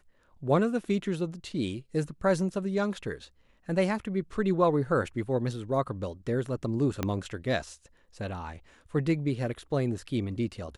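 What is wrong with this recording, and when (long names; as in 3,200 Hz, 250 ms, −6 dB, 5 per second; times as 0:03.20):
0:07.03: click −14 dBFS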